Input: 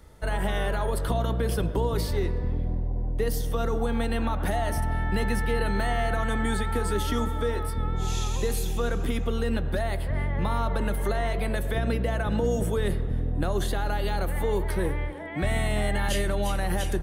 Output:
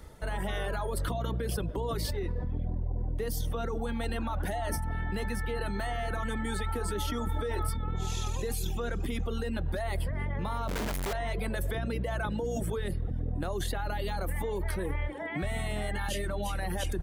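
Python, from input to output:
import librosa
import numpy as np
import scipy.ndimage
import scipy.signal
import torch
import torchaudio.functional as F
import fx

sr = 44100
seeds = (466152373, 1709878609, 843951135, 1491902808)

p1 = fx.dereverb_blind(x, sr, rt60_s=0.92)
p2 = fx.over_compress(p1, sr, threshold_db=-32.0, ratio=-0.5)
p3 = p1 + F.gain(torch.from_numpy(p2), 3.0).numpy()
p4 = fx.schmitt(p3, sr, flips_db=-43.0, at=(10.68, 11.13))
y = F.gain(torch.from_numpy(p4), -8.0).numpy()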